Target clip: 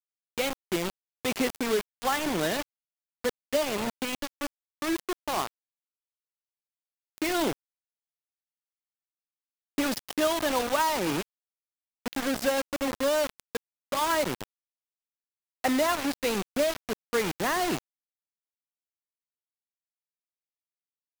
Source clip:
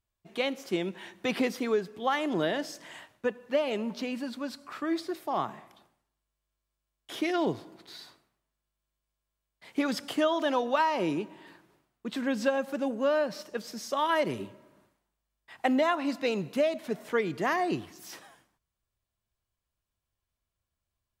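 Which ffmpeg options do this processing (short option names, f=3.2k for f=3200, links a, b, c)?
-af "acrusher=bits=4:mix=0:aa=0.000001"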